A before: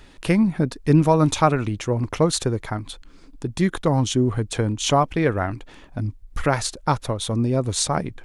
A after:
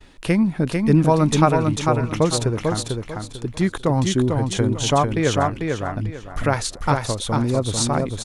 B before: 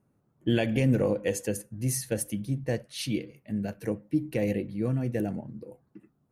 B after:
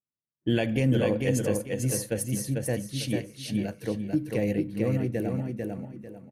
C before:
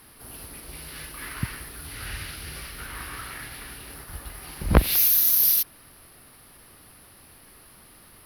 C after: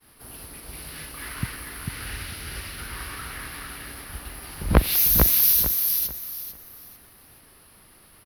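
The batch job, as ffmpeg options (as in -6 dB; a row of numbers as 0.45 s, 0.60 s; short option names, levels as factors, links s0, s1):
-af "agate=range=0.0224:threshold=0.00447:ratio=3:detection=peak,aecho=1:1:446|892|1338|1784:0.631|0.17|0.046|0.0124"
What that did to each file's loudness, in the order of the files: +1.0 LU, +1.5 LU, +0.5 LU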